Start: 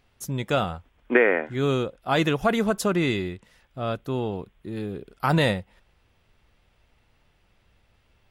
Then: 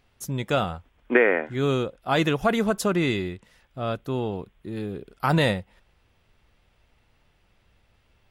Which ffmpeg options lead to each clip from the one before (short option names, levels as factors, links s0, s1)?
-af anull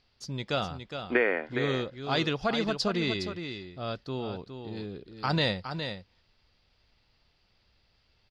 -af "lowpass=f=4700:t=q:w=6.7,aecho=1:1:413:0.398,volume=0.447"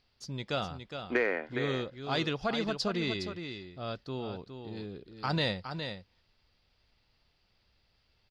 -af "asoftclip=type=tanh:threshold=0.266,volume=0.708"